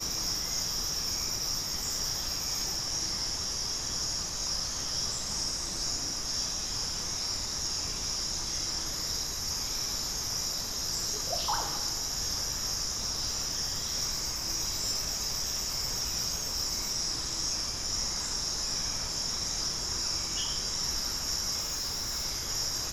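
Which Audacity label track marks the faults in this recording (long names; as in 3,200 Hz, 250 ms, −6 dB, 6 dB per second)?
21.600000	22.260000	clipping −29.5 dBFS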